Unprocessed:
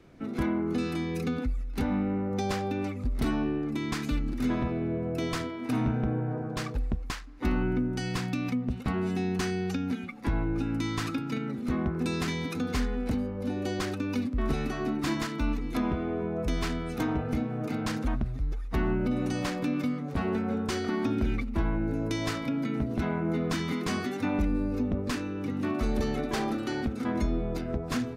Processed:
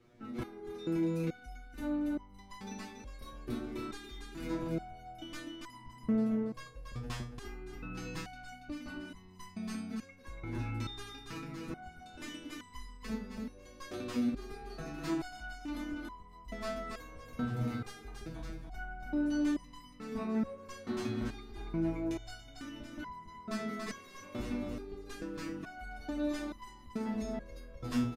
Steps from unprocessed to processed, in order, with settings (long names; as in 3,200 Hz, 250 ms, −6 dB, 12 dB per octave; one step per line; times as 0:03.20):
repeating echo 282 ms, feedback 47%, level −4 dB
step-sequenced resonator 2.3 Hz 120–1,000 Hz
level +3.5 dB